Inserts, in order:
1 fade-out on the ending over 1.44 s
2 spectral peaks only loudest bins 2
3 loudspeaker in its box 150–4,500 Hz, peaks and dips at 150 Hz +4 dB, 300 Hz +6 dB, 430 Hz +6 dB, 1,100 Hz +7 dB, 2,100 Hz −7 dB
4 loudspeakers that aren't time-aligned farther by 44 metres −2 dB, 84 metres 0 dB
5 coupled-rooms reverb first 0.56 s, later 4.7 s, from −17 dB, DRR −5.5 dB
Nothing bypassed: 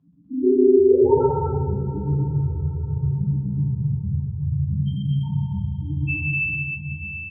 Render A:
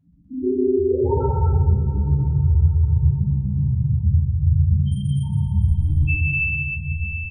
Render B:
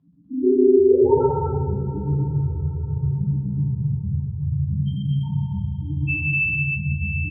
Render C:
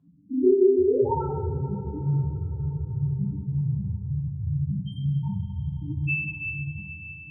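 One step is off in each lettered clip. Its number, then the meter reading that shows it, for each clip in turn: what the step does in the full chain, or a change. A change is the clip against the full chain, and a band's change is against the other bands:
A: 3, change in integrated loudness +1.5 LU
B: 1, 2 kHz band +2.5 dB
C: 4, echo-to-direct ratio 10.5 dB to 5.5 dB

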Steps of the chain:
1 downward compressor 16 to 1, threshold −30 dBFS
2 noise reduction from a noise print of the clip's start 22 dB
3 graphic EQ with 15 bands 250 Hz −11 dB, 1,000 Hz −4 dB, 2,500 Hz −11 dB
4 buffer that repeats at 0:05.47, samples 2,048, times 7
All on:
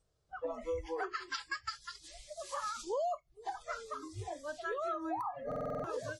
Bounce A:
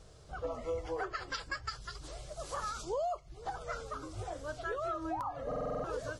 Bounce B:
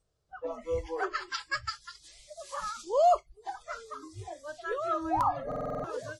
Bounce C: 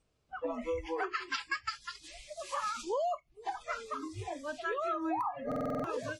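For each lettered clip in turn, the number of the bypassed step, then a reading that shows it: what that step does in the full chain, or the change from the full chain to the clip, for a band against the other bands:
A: 2, 125 Hz band +4.0 dB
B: 1, average gain reduction 2.5 dB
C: 3, change in integrated loudness +3.0 LU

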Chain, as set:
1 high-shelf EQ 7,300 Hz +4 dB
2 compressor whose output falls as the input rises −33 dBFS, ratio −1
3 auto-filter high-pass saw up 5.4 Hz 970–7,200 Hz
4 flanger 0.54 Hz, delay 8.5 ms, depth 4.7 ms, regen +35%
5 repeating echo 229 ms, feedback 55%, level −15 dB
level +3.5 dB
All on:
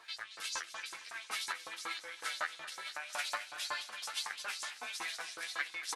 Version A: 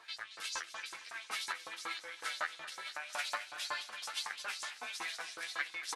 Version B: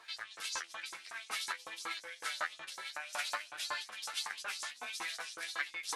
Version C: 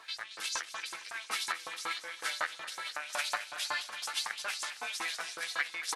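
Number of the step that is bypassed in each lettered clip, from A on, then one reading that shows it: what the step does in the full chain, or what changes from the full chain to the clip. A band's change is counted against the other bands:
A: 1, 8 kHz band −2.0 dB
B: 5, echo-to-direct ratio −13.5 dB to none audible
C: 4, change in integrated loudness +4.0 LU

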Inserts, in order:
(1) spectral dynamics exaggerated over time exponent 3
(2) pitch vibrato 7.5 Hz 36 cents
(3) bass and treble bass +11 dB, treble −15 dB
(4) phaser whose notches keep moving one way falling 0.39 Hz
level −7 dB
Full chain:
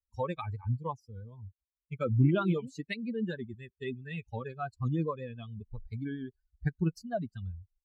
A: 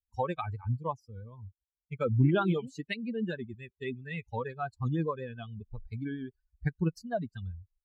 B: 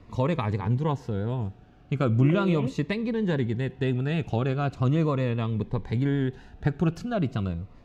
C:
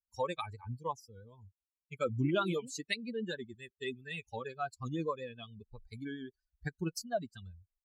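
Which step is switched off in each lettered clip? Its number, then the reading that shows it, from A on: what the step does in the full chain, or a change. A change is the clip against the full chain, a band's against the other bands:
4, 125 Hz band −2.0 dB
1, 1 kHz band −1.5 dB
3, 125 Hz band −10.0 dB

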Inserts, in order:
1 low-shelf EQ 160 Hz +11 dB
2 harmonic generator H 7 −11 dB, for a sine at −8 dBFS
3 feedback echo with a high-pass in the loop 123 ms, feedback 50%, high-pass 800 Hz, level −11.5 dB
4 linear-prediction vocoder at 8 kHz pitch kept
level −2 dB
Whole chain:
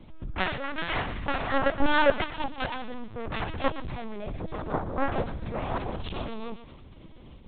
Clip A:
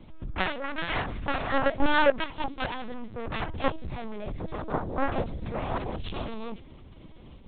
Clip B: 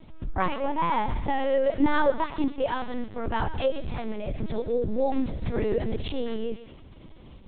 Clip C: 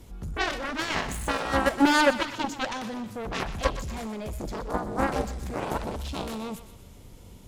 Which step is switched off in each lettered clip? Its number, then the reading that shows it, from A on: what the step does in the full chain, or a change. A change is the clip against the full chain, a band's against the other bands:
3, change in crest factor −1.5 dB
2, change in momentary loudness spread −4 LU
4, 250 Hz band +3.0 dB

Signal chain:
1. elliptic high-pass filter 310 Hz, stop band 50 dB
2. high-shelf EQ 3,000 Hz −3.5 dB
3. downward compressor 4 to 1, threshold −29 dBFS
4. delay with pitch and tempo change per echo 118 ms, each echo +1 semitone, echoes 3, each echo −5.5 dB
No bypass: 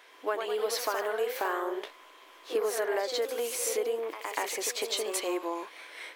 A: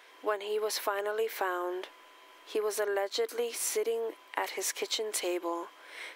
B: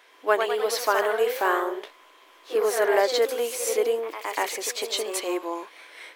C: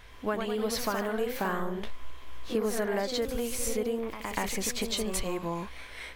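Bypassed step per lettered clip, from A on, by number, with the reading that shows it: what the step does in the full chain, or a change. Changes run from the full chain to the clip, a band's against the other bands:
4, change in crest factor +2.0 dB
3, change in momentary loudness spread +1 LU
1, 250 Hz band +8.5 dB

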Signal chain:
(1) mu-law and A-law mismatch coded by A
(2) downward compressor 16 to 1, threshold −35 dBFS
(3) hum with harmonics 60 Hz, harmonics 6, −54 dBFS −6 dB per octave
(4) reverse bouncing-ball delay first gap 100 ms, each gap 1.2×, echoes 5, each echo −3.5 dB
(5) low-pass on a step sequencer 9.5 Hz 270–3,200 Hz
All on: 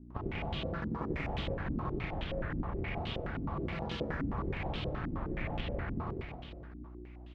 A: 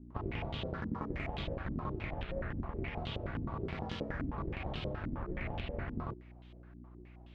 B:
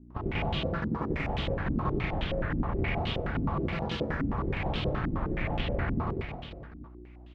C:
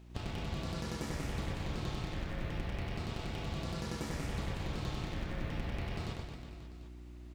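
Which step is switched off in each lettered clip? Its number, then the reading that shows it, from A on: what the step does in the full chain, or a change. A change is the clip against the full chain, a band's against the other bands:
4, change in momentary loudness spread +6 LU
2, average gain reduction 5.5 dB
5, 4 kHz band +3.0 dB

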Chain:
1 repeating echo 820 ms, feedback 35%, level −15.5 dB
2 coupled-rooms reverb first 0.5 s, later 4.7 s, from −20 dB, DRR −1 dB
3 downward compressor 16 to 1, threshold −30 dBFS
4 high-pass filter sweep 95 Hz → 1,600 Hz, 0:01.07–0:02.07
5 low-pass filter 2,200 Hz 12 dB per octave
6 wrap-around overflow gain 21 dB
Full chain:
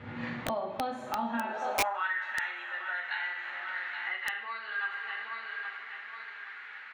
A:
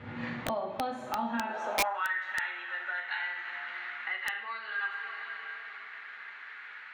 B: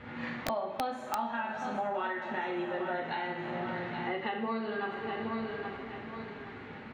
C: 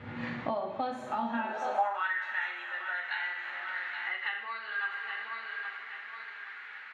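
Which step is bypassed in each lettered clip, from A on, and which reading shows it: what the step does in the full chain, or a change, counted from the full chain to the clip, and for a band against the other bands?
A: 1, change in momentary loudness spread +2 LU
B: 4, 2 kHz band −9.0 dB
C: 6, distortion level −8 dB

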